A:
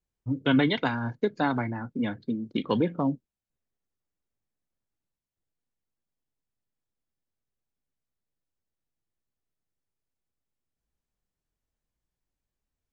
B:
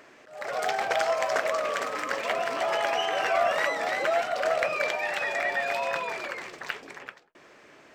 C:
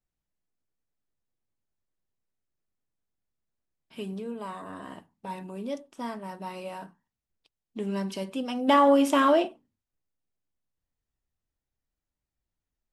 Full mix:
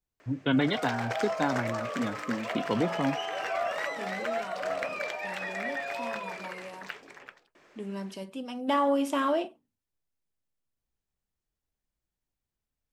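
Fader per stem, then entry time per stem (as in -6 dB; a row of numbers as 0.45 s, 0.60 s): -3.0 dB, -6.5 dB, -6.0 dB; 0.00 s, 0.20 s, 0.00 s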